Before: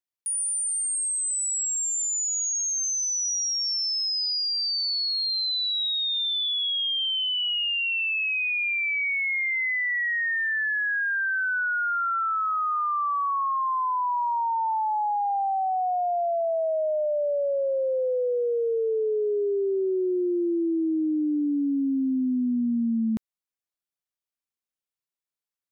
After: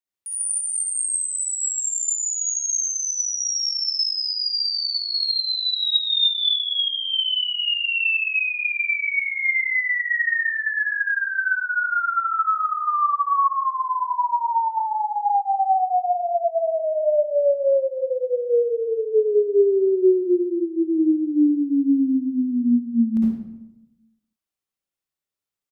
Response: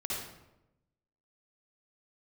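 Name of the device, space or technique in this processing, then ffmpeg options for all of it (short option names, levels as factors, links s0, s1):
bathroom: -filter_complex "[1:a]atrim=start_sample=2205[s0];[0:a][s0]afir=irnorm=-1:irlink=0,asplit=3[s1][s2][s3];[s1]afade=t=out:st=5.65:d=0.02[s4];[s2]aecho=1:1:5.5:0.76,afade=t=in:st=5.65:d=0.02,afade=t=out:st=6.54:d=0.02[s5];[s3]afade=t=in:st=6.54:d=0.02[s6];[s4][s5][s6]amix=inputs=3:normalize=0"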